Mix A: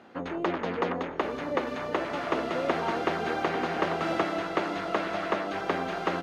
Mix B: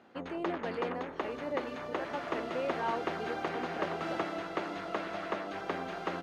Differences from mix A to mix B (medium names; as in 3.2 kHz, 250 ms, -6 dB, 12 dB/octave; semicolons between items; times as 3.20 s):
speech: add tilt shelf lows -6 dB, about 830 Hz; background -7.0 dB